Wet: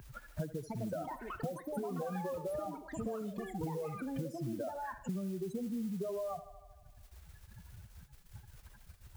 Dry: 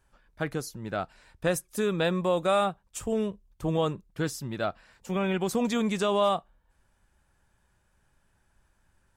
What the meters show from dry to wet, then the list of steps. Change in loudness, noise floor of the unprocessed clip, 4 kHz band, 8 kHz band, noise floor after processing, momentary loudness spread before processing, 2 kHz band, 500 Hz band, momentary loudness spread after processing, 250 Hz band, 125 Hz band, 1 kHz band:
-11.0 dB, -70 dBFS, -22.5 dB, -16.0 dB, -59 dBFS, 10 LU, -15.5 dB, -11.5 dB, 19 LU, -8.5 dB, -7.5 dB, -12.0 dB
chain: spectral contrast raised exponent 3.4; HPF 45 Hz 6 dB/oct; band shelf 6000 Hz -14 dB; compressor 10:1, threshold -39 dBFS, peak gain reduction 17 dB; modulation noise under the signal 22 dB; on a send: thinning echo 77 ms, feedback 54%, high-pass 200 Hz, level -15 dB; on the sum: echoes that change speed 0.419 s, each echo +6 st, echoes 3, each echo -6 dB; three-band squash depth 100%; gain +2 dB

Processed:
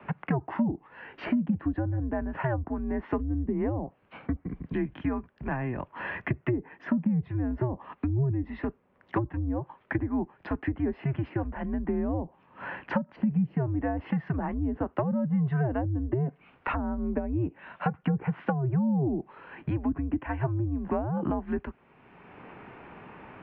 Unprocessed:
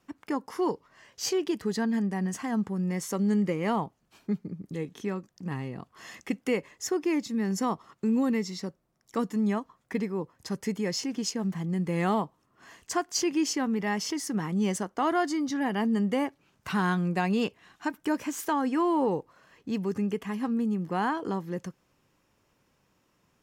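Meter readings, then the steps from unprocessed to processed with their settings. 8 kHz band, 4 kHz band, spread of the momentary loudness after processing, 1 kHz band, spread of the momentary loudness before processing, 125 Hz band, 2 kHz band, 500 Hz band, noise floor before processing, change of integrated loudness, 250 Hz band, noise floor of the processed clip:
under -40 dB, under -15 dB, 10 LU, -4.5 dB, 10 LU, +6.0 dB, -2.0 dB, -2.5 dB, -71 dBFS, -1.0 dB, -1.0 dB, -63 dBFS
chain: treble ducked by the level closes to 380 Hz, closed at -23 dBFS; mistuned SSB -130 Hz 270–2900 Hz; three-band squash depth 70%; gain +5 dB

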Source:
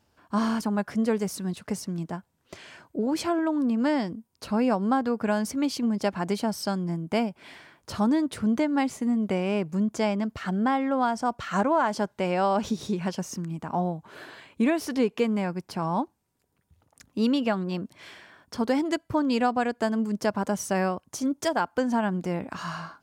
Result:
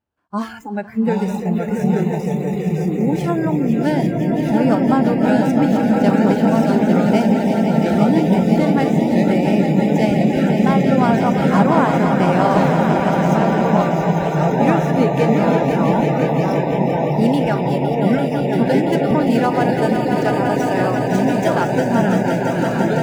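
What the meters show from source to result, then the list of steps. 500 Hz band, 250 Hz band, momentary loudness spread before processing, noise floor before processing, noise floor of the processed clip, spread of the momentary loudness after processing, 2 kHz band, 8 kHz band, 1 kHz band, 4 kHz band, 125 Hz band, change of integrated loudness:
+12.0 dB, +11.0 dB, 11 LU, -72 dBFS, -23 dBFS, 4 LU, +9.5 dB, n/a, +10.0 dB, +5.5 dB, +16.5 dB, +11.0 dB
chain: median filter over 9 samples; swelling echo 0.17 s, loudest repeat 5, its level -7 dB; echoes that change speed 0.672 s, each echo -3 st, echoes 2; spectral noise reduction 19 dB; gain +5 dB

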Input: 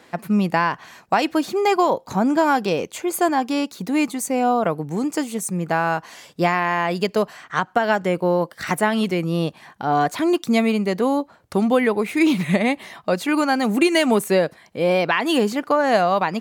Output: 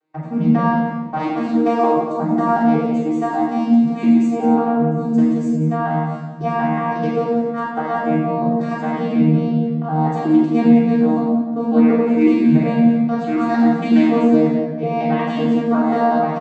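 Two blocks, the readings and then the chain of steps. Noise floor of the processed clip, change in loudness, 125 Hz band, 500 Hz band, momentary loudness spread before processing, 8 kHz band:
-26 dBFS, +3.5 dB, +6.5 dB, 0.0 dB, 7 LU, under -15 dB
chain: arpeggiated vocoder bare fifth, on D#3, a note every 0.183 s; HPF 140 Hz; bell 880 Hz +2.5 dB; gate -43 dBFS, range -19 dB; on a send: echo 0.177 s -9.5 dB; on the sum: shoebox room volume 790 m³, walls mixed, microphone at 3.5 m; gain -6 dB

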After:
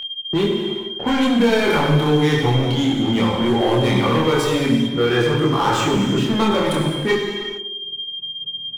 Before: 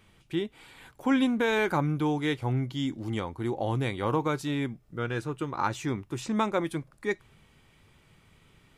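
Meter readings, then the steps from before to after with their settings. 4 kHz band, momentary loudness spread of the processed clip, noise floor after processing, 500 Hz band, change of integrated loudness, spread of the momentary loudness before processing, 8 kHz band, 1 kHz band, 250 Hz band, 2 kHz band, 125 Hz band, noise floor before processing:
+19.0 dB, 10 LU, -31 dBFS, +12.5 dB, +11.0 dB, 9 LU, +12.5 dB, +10.0 dB, +11.5 dB, +10.0 dB, +11.5 dB, -62 dBFS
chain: gate with hold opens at -48 dBFS; HPF 130 Hz 24 dB/oct; low-pass opened by the level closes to 490 Hz, open at -26 dBFS; sample leveller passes 3; in parallel at +1 dB: limiter -19.5 dBFS, peak gain reduction 7.5 dB; on the sum: non-linear reverb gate 0.47 s falling, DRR -0.5 dB; soft clip -7.5 dBFS, distortion -17 dB; whine 3200 Hz -28 dBFS; chorus voices 4, 0.71 Hz, delay 26 ms, depth 1.3 ms; on a send: narrowing echo 0.104 s, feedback 50%, band-pass 370 Hz, level -9 dB; on the sum: three-band squash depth 40%

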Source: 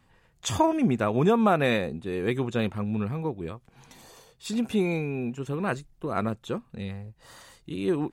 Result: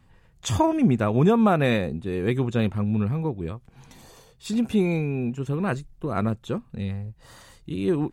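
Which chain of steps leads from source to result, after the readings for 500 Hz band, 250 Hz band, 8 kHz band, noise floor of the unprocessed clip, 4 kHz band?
+1.5 dB, +4.0 dB, 0.0 dB, -63 dBFS, 0.0 dB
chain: low shelf 200 Hz +9 dB

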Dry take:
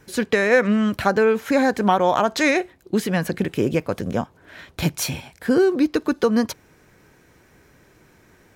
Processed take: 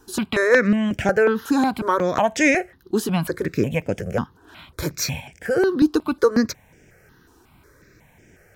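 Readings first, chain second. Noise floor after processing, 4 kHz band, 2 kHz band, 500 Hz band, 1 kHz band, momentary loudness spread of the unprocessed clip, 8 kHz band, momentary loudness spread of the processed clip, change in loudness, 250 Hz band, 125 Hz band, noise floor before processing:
-56 dBFS, -1.0 dB, +1.0 dB, -0.5 dB, -2.0 dB, 10 LU, +1.0 dB, 11 LU, -0.5 dB, -0.5 dB, 0.0 dB, -56 dBFS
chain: step phaser 5.5 Hz 570–4100 Hz; gain +3 dB

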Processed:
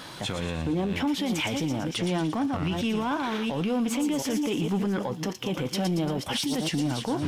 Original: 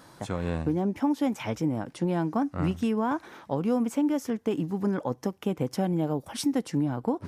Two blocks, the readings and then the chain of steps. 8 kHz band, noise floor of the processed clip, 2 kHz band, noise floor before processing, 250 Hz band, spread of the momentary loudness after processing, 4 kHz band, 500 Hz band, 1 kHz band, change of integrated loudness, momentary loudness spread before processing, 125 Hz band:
+7.0 dB, -39 dBFS, +7.0 dB, -55 dBFS, 0.0 dB, 4 LU, +12.0 dB, -0.5 dB, +1.0 dB, +1.0 dB, 5 LU, +0.5 dB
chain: reverse delay 0.352 s, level -11 dB; bell 3100 Hz +12 dB 1.2 oct; in parallel at -1.5 dB: negative-ratio compressor -31 dBFS; on the sum: limiter -18.5 dBFS, peak gain reduction 9 dB; flange 0.63 Hz, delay 4.7 ms, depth 2.8 ms, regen -82%; soft clip -24 dBFS, distortion -21 dB; crackle 380/s -60 dBFS; on a send: thin delay 0.115 s, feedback 56%, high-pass 4500 Hz, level -4 dB; on the sum: gain +5 dB

